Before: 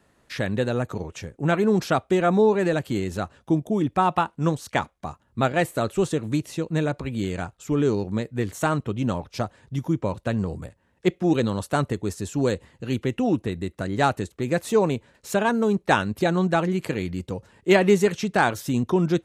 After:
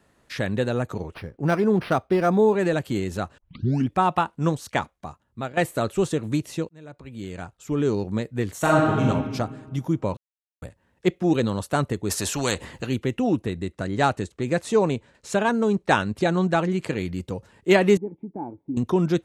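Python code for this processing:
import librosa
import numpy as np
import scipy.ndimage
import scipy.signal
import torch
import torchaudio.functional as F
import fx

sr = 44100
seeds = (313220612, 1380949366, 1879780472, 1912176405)

y = fx.resample_linear(x, sr, factor=6, at=(1.14, 2.53))
y = fx.reverb_throw(y, sr, start_s=8.59, length_s=0.44, rt60_s=1.6, drr_db=-3.5)
y = fx.spectral_comp(y, sr, ratio=2.0, at=(12.09, 12.85), fade=0.02)
y = fx.lowpass(y, sr, hz=9800.0, slope=24, at=(13.52, 16.97))
y = fx.formant_cascade(y, sr, vowel='u', at=(17.97, 18.77))
y = fx.edit(y, sr, fx.tape_start(start_s=3.38, length_s=0.52),
    fx.fade_out_to(start_s=4.68, length_s=0.89, floor_db=-12.0),
    fx.fade_in_span(start_s=6.69, length_s=1.33),
    fx.silence(start_s=10.17, length_s=0.45), tone=tone)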